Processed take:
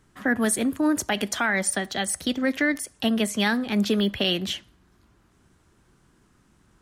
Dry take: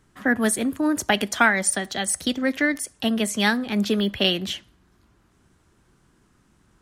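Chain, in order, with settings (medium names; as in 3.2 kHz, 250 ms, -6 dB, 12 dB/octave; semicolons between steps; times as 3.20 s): 1.37–3.54 s: dynamic bell 7.6 kHz, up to -4 dB, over -35 dBFS, Q 0.81; peak limiter -13 dBFS, peak gain reduction 8 dB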